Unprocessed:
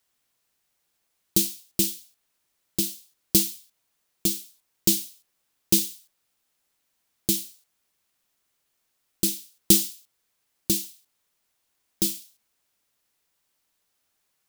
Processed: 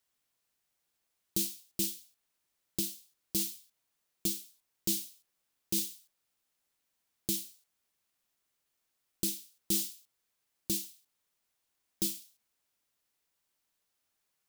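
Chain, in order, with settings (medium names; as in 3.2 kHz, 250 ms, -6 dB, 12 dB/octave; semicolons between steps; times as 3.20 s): peak limiter -11.5 dBFS, peak gain reduction 10 dB; trim -6.5 dB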